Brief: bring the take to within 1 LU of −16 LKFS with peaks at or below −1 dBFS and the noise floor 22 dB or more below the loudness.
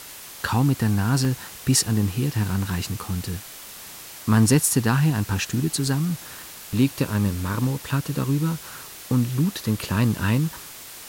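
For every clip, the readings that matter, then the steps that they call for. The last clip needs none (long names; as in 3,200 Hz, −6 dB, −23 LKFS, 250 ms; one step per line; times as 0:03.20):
number of dropouts 5; longest dropout 1.1 ms; background noise floor −41 dBFS; target noise floor −45 dBFS; integrated loudness −23.0 LKFS; sample peak −7.0 dBFS; target loudness −16.0 LKFS
→ repair the gap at 0:01.25/0:02.50/0:03.02/0:04.32/0:07.64, 1.1 ms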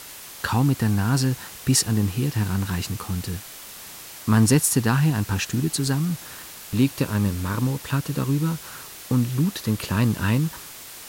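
number of dropouts 0; background noise floor −41 dBFS; target noise floor −45 dBFS
→ noise reduction from a noise print 6 dB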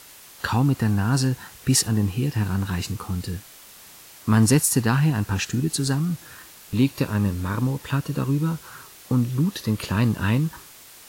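background noise floor −47 dBFS; integrated loudness −23.5 LKFS; sample peak −7.0 dBFS; target loudness −16.0 LKFS
→ level +7.5 dB
brickwall limiter −1 dBFS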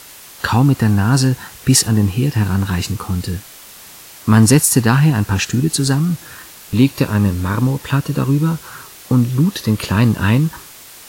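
integrated loudness −16.0 LKFS; sample peak −1.0 dBFS; background noise floor −39 dBFS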